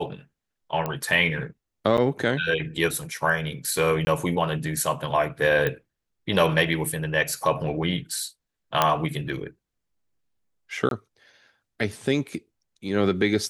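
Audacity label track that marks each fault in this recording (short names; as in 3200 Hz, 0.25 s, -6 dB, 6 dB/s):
0.860000	0.860000	pop -14 dBFS
1.970000	1.980000	gap 8 ms
4.050000	4.070000	gap 20 ms
5.670000	5.670000	pop -12 dBFS
8.820000	8.820000	pop -4 dBFS
10.890000	10.910000	gap 22 ms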